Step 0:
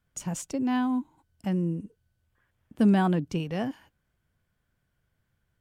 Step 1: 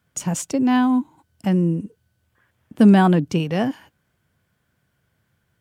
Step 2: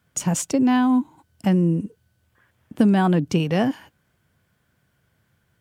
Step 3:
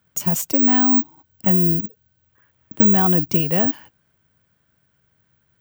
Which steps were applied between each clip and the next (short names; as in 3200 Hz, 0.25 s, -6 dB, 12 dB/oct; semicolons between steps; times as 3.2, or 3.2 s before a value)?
HPF 91 Hz; gain +9 dB
compressor 6:1, threshold -16 dBFS, peak gain reduction 8 dB; gain +2 dB
careless resampling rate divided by 2×, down filtered, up zero stuff; gain -1 dB